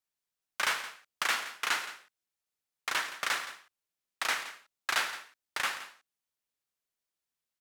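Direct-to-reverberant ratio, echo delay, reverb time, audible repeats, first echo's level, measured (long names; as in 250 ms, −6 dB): no reverb audible, 111 ms, no reverb audible, 2, −17.5 dB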